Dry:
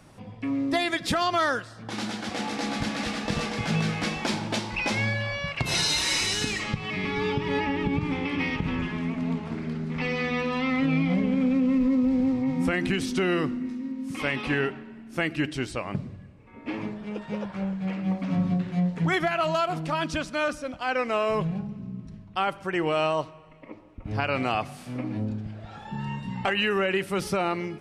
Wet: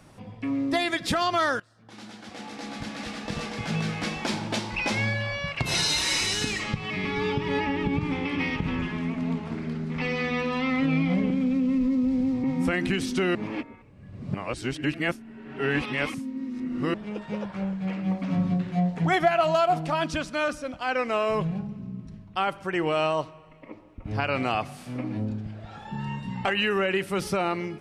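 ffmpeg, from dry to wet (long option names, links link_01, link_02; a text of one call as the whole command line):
ffmpeg -i in.wav -filter_complex "[0:a]asettb=1/sr,asplit=3[link_01][link_02][link_03];[link_01]atrim=end=11.304[link_04];[link_02]atrim=start=11.3:end=12.44,asetpts=PTS-STARTPTS,afade=type=in:duration=0.004:curve=qsin,afade=type=out:start_time=1.136:duration=0.004:curve=qsin,acrossover=split=320|3000[link_05][link_06][link_07];[link_06]acompressor=threshold=-34dB:ratio=6:attack=3.2:release=140:knee=2.83:detection=peak[link_08];[link_05][link_08][link_07]amix=inputs=3:normalize=0[link_09];[link_03]atrim=start=12.436[link_10];[link_04][link_09]acrossfade=duration=0.004:curve1=hsin:curve2=qsin[link_11];[link_11][link_10]acrossfade=duration=0.004:curve1=qsin:curve2=hsin,asettb=1/sr,asplit=3[link_12][link_13][link_14];[link_12]atrim=end=18.754[link_15];[link_13]atrim=start=18.75:end=20.09,asetpts=PTS-STARTPTS,afade=type=in:duration=0.004:curve=qsin,afade=type=out:start_time=1.336:duration=0.004:curve=qsin,equalizer=frequency=730:width_type=o:width=0.28:gain=9.5[link_16];[link_14]atrim=start=20.086[link_17];[link_15][link_16]acrossfade=duration=0.004:curve1=hsin:curve2=qsin[link_18];[link_18][link_17]acrossfade=duration=0.004:curve1=qsin:curve2=hsin,asplit=4[link_19][link_20][link_21][link_22];[link_19]atrim=end=1.6,asetpts=PTS-STARTPTS,afade=type=out:start_time=1.596:duration=0.004:curve=hsin:silence=0.125893[link_23];[link_20]atrim=start=1.6:end=13.352,asetpts=PTS-STARTPTS,afade=type=in:duration=3.08:silence=0.125893[link_24];[link_21]atrim=start=13.348:end=16.942,asetpts=PTS-STARTPTS,areverse[link_25];[link_22]atrim=start=16.938[link_26];[link_23][link_24]concat=n=2:v=0:a=1[link_27];[link_27][link_25]acrossfade=duration=0.004:curve1=hsin:curve2=hsin[link_28];[link_28][link_26]acrossfade=duration=0.004:curve1=hsin:curve2=hsin" out.wav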